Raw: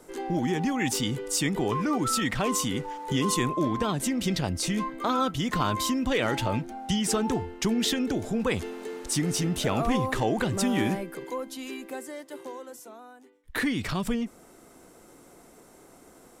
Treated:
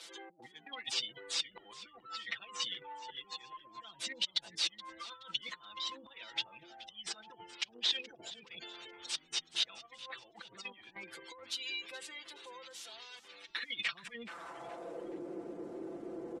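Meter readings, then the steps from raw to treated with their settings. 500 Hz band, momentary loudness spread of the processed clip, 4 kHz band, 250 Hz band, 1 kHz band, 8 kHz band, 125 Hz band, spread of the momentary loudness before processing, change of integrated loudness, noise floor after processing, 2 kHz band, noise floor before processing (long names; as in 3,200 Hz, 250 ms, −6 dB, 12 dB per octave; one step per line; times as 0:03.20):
−18.5 dB, 15 LU, −2.5 dB, −24.5 dB, −18.0 dB, −14.0 dB, below −30 dB, 12 LU, −12.0 dB, −64 dBFS, −9.5 dB, −54 dBFS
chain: linear delta modulator 64 kbit/s, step −40.5 dBFS
gate on every frequency bin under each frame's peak −25 dB strong
comb filter 5.9 ms, depth 89%
compressor whose output falls as the input rises −30 dBFS, ratio −0.5
harmonic generator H 3 −24 dB, 4 −32 dB, 5 −43 dB, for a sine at −15 dBFS
band-pass filter sweep 3,700 Hz → 370 Hz, 0:13.71–0:15.16
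echo with shifted repeats 424 ms, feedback 40%, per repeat −97 Hz, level −17 dB
level +3 dB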